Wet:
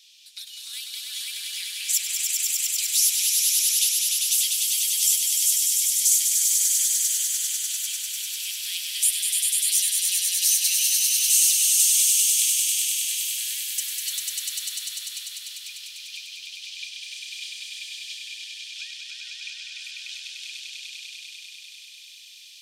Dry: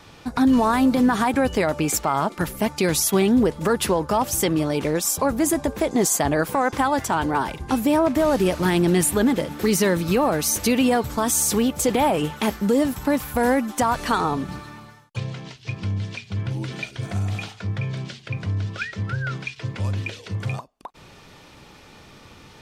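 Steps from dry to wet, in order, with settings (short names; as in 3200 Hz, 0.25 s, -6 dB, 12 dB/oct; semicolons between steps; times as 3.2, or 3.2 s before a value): steep high-pass 2900 Hz 36 dB/oct; swelling echo 99 ms, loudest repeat 5, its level -3.5 dB; gain +1.5 dB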